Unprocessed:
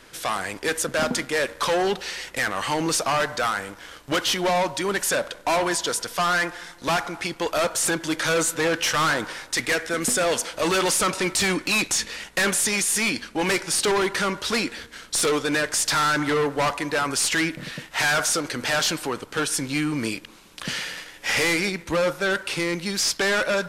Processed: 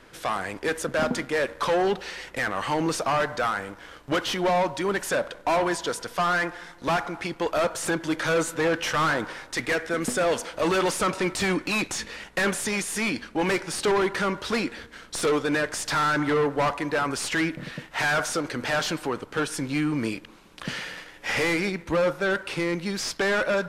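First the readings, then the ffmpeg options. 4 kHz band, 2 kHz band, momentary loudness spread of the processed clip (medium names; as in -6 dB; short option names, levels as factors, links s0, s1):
-6.5 dB, -3.0 dB, 8 LU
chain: -af "highshelf=f=3000:g=-10.5"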